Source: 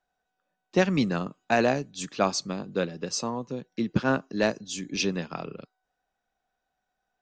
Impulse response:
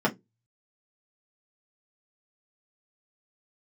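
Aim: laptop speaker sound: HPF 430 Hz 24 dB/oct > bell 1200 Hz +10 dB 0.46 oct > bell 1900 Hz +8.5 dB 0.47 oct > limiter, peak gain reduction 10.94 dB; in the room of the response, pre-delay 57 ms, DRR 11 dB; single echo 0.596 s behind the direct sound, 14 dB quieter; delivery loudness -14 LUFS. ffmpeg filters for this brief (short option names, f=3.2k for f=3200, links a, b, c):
-filter_complex "[0:a]aecho=1:1:596:0.2,asplit=2[a][b];[1:a]atrim=start_sample=2205,adelay=57[c];[b][c]afir=irnorm=-1:irlink=0,volume=-24dB[d];[a][d]amix=inputs=2:normalize=0,highpass=f=430:w=0.5412,highpass=f=430:w=1.3066,equalizer=f=1.2k:t=o:w=0.46:g=10,equalizer=f=1.9k:t=o:w=0.47:g=8.5,volume=17dB,alimiter=limit=0dB:level=0:latency=1"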